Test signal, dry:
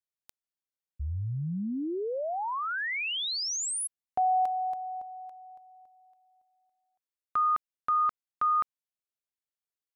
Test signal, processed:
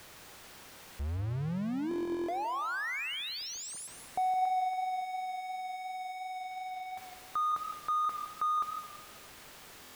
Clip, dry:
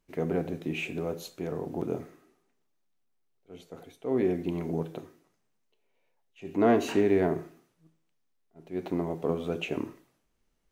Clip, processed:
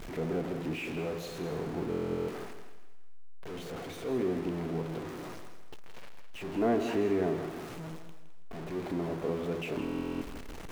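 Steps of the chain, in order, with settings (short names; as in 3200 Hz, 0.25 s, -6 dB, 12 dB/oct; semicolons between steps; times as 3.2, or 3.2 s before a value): zero-crossing step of -28.5 dBFS; high shelf 4000 Hz -11.5 dB; on a send: thinning echo 0.211 s, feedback 34%, high-pass 480 Hz, level -13 dB; on the sum: stuck buffer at 1.89/9.82, samples 1024, times 16; warbling echo 0.163 s, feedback 33%, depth 58 cents, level -11 dB; gain -6.5 dB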